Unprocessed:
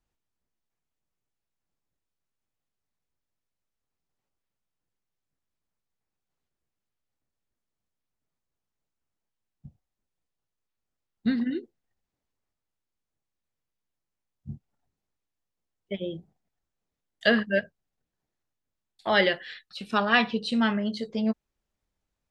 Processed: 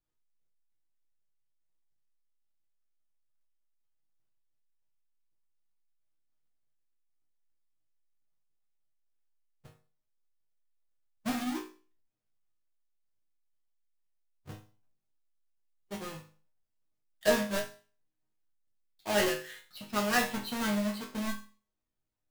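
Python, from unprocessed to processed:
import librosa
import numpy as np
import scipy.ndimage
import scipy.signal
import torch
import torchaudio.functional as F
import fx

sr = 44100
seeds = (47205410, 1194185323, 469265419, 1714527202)

y = fx.halfwave_hold(x, sr)
y = fx.mod_noise(y, sr, seeds[0], snr_db=21)
y = fx.resonator_bank(y, sr, root=44, chord='minor', decay_s=0.38)
y = y * librosa.db_to_amplitude(4.5)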